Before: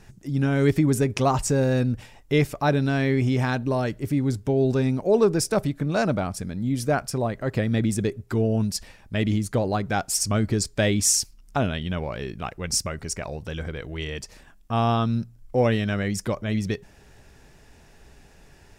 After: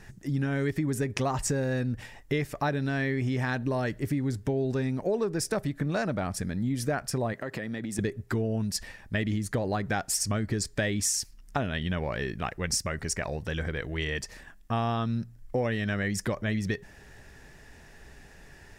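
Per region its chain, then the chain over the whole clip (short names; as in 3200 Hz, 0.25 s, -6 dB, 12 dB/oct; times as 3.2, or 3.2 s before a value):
7.33–7.99 HPF 170 Hz + compressor 10:1, threshold -30 dBFS
whole clip: bell 1800 Hz +8.5 dB 0.31 oct; compressor, threshold -25 dBFS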